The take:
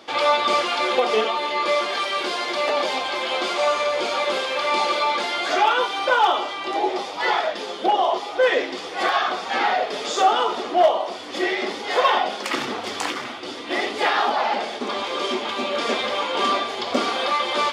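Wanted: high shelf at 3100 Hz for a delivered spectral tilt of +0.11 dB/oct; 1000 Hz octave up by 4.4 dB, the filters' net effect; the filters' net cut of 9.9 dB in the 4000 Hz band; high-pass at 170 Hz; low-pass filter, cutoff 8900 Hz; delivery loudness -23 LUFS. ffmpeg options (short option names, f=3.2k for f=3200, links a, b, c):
-af "highpass=170,lowpass=8.9k,equalizer=f=1k:t=o:g=7,highshelf=f=3.1k:g=-8.5,equalizer=f=4k:t=o:g=-7.5,volume=-3dB"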